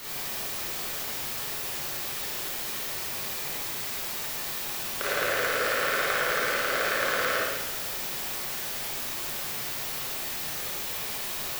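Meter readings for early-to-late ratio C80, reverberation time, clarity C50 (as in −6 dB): 1.0 dB, 1.1 s, −3.0 dB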